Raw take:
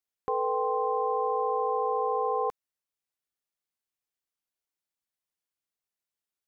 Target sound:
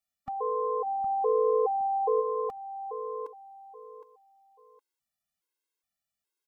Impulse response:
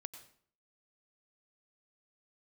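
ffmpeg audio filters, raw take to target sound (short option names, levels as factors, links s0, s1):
-filter_complex "[0:a]aecho=1:1:764|1528|2292:0.282|0.0761|0.0205,alimiter=level_in=1.06:limit=0.0631:level=0:latency=1:release=363,volume=0.944,asplit=3[s0][s1][s2];[s0]afade=t=out:st=0.85:d=0.02[s3];[s1]tiltshelf=f=1300:g=8,afade=t=in:st=0.85:d=0.02,afade=t=out:st=2.2:d=0.02[s4];[s2]afade=t=in:st=2.2:d=0.02[s5];[s3][s4][s5]amix=inputs=3:normalize=0,afftfilt=real='re*gt(sin(2*PI*1.2*pts/sr)*(1-2*mod(floor(b*sr/1024/280),2)),0)':imag='im*gt(sin(2*PI*1.2*pts/sr)*(1-2*mod(floor(b*sr/1024/280),2)),0)':win_size=1024:overlap=0.75,volume=1.78"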